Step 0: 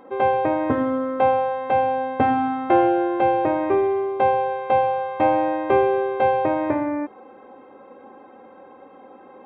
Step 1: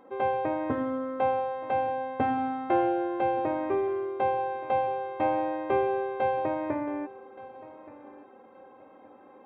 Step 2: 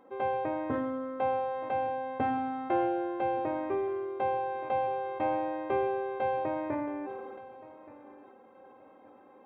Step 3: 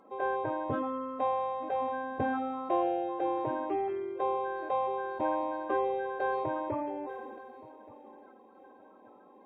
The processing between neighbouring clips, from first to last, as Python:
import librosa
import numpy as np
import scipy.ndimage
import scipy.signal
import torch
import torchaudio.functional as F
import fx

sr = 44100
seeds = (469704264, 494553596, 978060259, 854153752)

y1 = fx.echo_feedback(x, sr, ms=1174, feedback_pct=26, wet_db=-18.5)
y1 = F.gain(torch.from_numpy(y1), -8.0).numpy()
y2 = fx.sustainer(y1, sr, db_per_s=24.0)
y2 = F.gain(torch.from_numpy(y2), -4.0).numpy()
y3 = fx.spec_quant(y2, sr, step_db=30)